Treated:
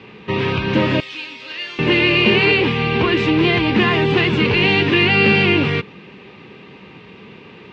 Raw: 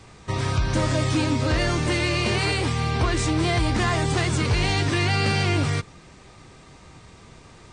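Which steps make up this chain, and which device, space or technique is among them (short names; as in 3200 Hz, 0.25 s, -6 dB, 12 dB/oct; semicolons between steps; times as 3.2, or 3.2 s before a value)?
kitchen radio (speaker cabinet 170–3500 Hz, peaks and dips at 200 Hz +8 dB, 420 Hz +7 dB, 670 Hz -8 dB, 1300 Hz -5 dB, 2700 Hz +9 dB); 1–1.79 differentiator; gain +7.5 dB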